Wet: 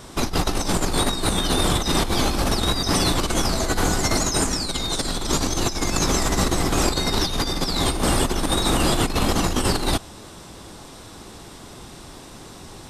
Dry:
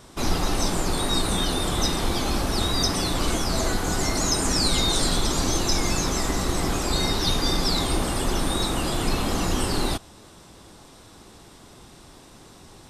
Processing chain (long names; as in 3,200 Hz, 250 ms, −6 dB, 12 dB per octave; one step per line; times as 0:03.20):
compressor whose output falls as the input rises −25 dBFS, ratio −0.5
level +4.5 dB